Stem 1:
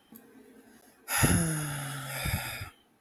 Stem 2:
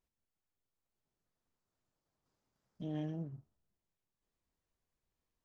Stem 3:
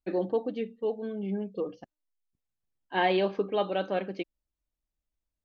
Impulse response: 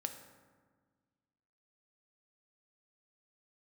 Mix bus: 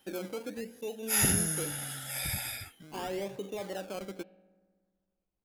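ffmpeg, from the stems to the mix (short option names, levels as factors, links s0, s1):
-filter_complex "[0:a]highshelf=f=2900:g=11,volume=0.473[s0];[1:a]acompressor=threshold=0.00562:ratio=5,volume=0.596[s1];[2:a]volume=0.501,asplit=2[s2][s3];[s3]volume=0.266[s4];[s1][s2]amix=inputs=2:normalize=0,acrusher=samples=19:mix=1:aa=0.000001:lfo=1:lforange=11.4:lforate=0.8,alimiter=level_in=2.66:limit=0.0631:level=0:latency=1:release=48,volume=0.376,volume=1[s5];[3:a]atrim=start_sample=2205[s6];[s4][s6]afir=irnorm=-1:irlink=0[s7];[s0][s5][s7]amix=inputs=3:normalize=0,equalizer=f=1200:w=4.4:g=-4.5"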